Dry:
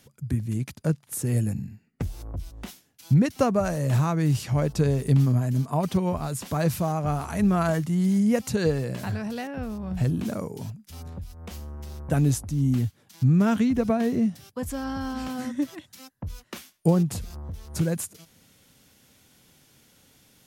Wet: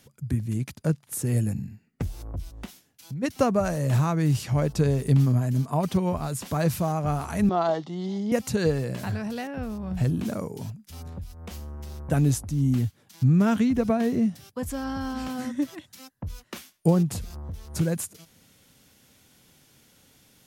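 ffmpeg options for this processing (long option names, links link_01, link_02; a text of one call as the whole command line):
ffmpeg -i in.wav -filter_complex "[0:a]asplit=3[link_01][link_02][link_03];[link_01]afade=type=out:start_time=2.65:duration=0.02[link_04];[link_02]acompressor=threshold=-45dB:ratio=2:attack=3.2:release=140:knee=1:detection=peak,afade=type=in:start_time=2.65:duration=0.02,afade=type=out:start_time=3.22:duration=0.02[link_05];[link_03]afade=type=in:start_time=3.22:duration=0.02[link_06];[link_04][link_05][link_06]amix=inputs=3:normalize=0,asettb=1/sr,asplit=3[link_07][link_08][link_09];[link_07]atrim=end=7.494[link_10];[link_08]atrim=start=7.49:end=8.32,asetpts=PTS-STARTPTS,afade=type=in:duration=0.004:curve=qsin,afade=type=out:start_time=0.826:duration=0.004:curve=qsin,highpass=320,equalizer=frequency=380:width_type=q:width=4:gain=4,equalizer=frequency=780:width_type=q:width=4:gain=9,equalizer=frequency=1600:width_type=q:width=4:gain=-9,equalizer=frequency=2400:width_type=q:width=4:gain=-10,equalizer=frequency=3600:width_type=q:width=4:gain=7,lowpass=frequency=5000:width=0.5412,lowpass=frequency=5000:width=1.3066[link_11];[link_09]atrim=start=8.316[link_12];[link_10][link_11]acrossfade=duration=0.004:curve1=hsin:curve2=qsin[link_13];[link_13][link_12]acrossfade=duration=0.004:curve1=qsin:curve2=hsin" out.wav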